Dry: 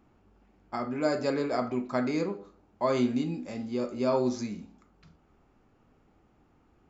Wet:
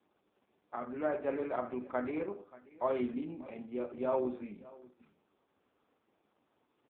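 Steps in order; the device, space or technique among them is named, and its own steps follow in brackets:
satellite phone (band-pass filter 310–3,200 Hz; single-tap delay 582 ms −20.5 dB; level −3.5 dB; AMR narrowband 4.75 kbit/s 8,000 Hz)

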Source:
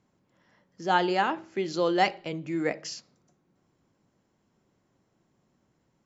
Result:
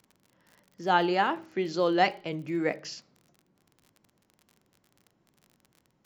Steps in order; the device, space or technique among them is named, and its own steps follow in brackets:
lo-fi chain (low-pass filter 5,500 Hz 12 dB per octave; tape wow and flutter; surface crackle 43 per second −43 dBFS)

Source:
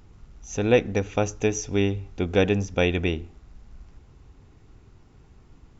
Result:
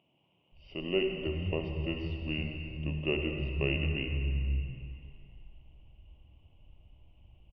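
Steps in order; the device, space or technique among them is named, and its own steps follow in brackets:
slowed and reverbed (speed change −23%; convolution reverb RT60 2.5 s, pre-delay 48 ms, DRR 3 dB)
drawn EQ curve 150 Hz 0 dB, 230 Hz −8 dB, 350 Hz −6 dB, 500 Hz −3 dB, 930 Hz −6 dB, 1,700 Hz −24 dB, 2,900 Hz +12 dB, 4,300 Hz −29 dB, 9,200 Hz −22 dB
multiband delay without the direct sound highs, lows 520 ms, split 180 Hz
level −6 dB

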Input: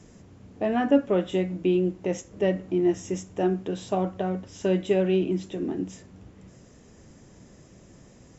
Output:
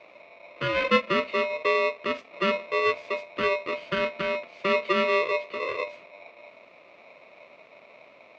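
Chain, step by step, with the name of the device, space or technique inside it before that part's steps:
ring modulator pedal into a guitar cabinet (ring modulator with a square carrier 780 Hz; loudspeaker in its box 110–3,700 Hz, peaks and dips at 110 Hz −4 dB, 600 Hz +7 dB, 890 Hz −8 dB, 1,500 Hz −3 dB, 2,300 Hz +10 dB)
level −2 dB

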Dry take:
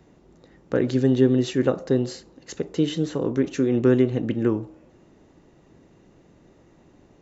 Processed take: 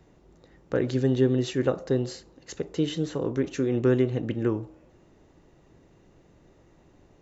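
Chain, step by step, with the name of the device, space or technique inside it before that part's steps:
low shelf boost with a cut just above (low-shelf EQ 70 Hz +6 dB; parametric band 230 Hz −4 dB 0.92 octaves)
level −2.5 dB

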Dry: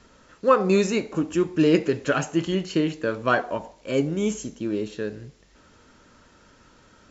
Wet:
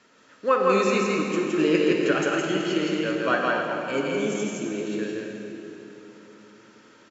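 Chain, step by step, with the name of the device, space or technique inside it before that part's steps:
stadium PA (high-pass filter 210 Hz 12 dB per octave; parametric band 2,200 Hz +5 dB 1.1 octaves; loudspeakers that aren't time-aligned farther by 57 metres −2 dB, 90 metres −11 dB; convolution reverb RT60 3.5 s, pre-delay 37 ms, DRR 2.5 dB)
level −4.5 dB

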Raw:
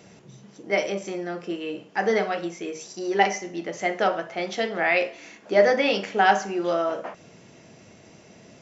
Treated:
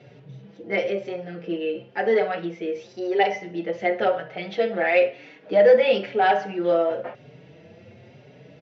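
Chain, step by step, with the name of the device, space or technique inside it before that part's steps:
barber-pole flanger into a guitar amplifier (barber-pole flanger 5.1 ms +0.98 Hz; soft clipping −13 dBFS, distortion −19 dB; loudspeaker in its box 82–3,900 Hz, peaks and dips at 91 Hz +8 dB, 130 Hz +9 dB, 500 Hz +8 dB, 1,100 Hz −7 dB)
level +2.5 dB

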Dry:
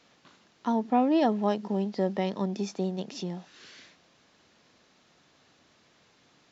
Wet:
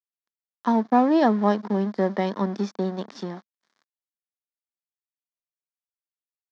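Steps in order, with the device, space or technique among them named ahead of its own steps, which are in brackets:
blown loudspeaker (dead-zone distortion −43 dBFS; loudspeaker in its box 200–5,700 Hz, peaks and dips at 210 Hz +6 dB, 1,100 Hz +6 dB, 1,700 Hz +6 dB, 2,700 Hz −9 dB)
level +5 dB

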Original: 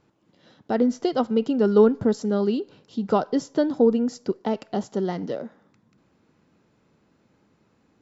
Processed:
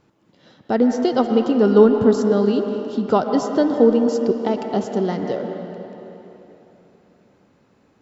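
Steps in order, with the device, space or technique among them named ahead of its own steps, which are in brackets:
filtered reverb send (on a send: high-pass filter 250 Hz 6 dB per octave + low-pass filter 3,300 Hz 12 dB per octave + convolution reverb RT60 3.4 s, pre-delay 107 ms, DRR 4 dB)
on the sum: level +4 dB

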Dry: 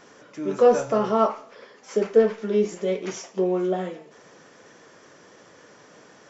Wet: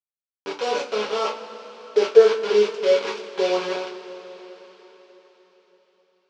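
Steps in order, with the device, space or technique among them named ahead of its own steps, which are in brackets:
0:01.94–0:03.57: parametric band 1,200 Hz +13 dB 2.7 octaves
hand-held game console (bit reduction 4 bits; loudspeaker in its box 470–4,700 Hz, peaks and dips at 700 Hz −9 dB, 1,200 Hz −4 dB, 1,900 Hz −8 dB, 3,700 Hz −4 dB)
coupled-rooms reverb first 0.22 s, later 4.7 s, from −22 dB, DRR −2 dB
level −3.5 dB

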